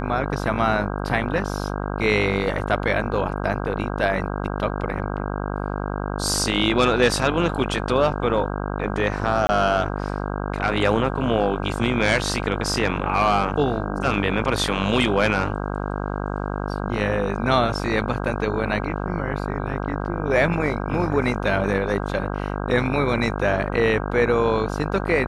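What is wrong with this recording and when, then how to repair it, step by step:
buzz 50 Hz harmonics 32 -27 dBFS
9.47–9.49 gap 20 ms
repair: de-hum 50 Hz, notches 32; interpolate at 9.47, 20 ms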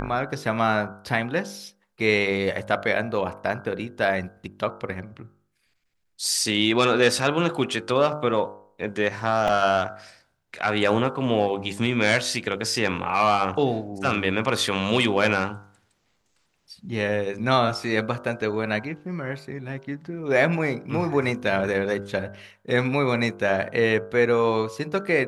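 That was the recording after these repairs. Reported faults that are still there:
none

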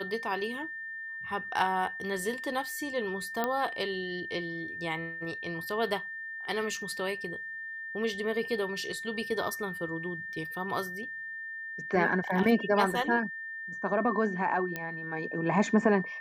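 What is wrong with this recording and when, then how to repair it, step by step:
tone 1800 Hz -37 dBFS
3.44 pop -15 dBFS
14.76 pop -19 dBFS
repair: de-click; notch 1800 Hz, Q 30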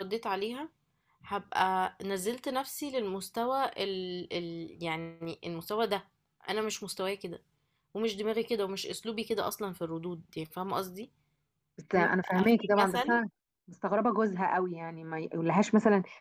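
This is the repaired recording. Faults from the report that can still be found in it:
none

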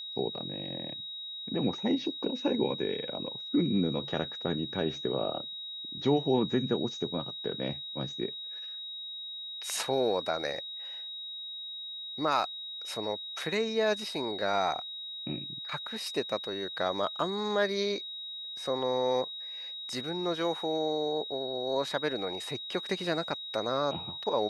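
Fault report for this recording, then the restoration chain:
tone 3800 Hz -38 dBFS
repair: notch 3800 Hz, Q 30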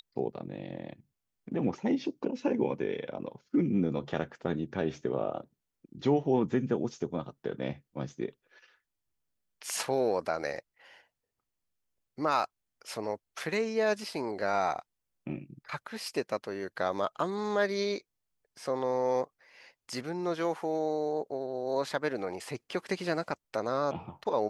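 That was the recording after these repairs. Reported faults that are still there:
none

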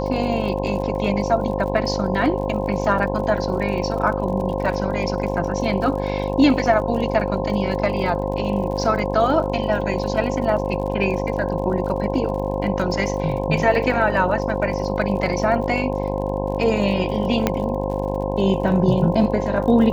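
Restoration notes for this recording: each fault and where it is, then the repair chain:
buzz 50 Hz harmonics 21 -25 dBFS
crackle 48/s -31 dBFS
tone 530 Hz -26 dBFS
17.47 pop -4 dBFS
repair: de-click; notch 530 Hz, Q 30; de-hum 50 Hz, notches 21

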